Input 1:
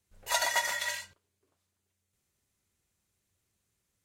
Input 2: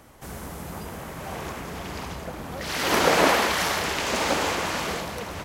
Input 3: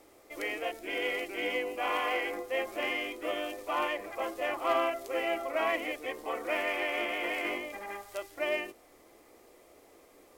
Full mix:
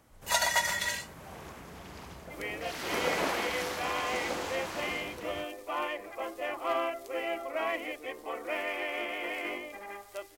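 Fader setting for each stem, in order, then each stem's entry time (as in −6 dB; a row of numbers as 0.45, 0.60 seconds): +1.5, −12.0, −2.5 decibels; 0.00, 0.00, 2.00 seconds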